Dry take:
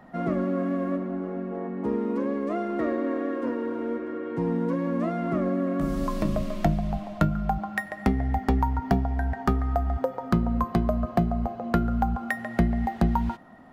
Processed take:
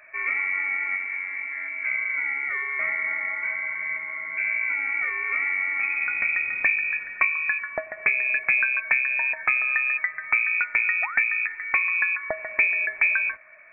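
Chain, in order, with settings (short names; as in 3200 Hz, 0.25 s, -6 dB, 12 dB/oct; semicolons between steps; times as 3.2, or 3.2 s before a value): painted sound fall, 11.02–11.24, 660–1900 Hz -34 dBFS; inverted band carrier 2500 Hz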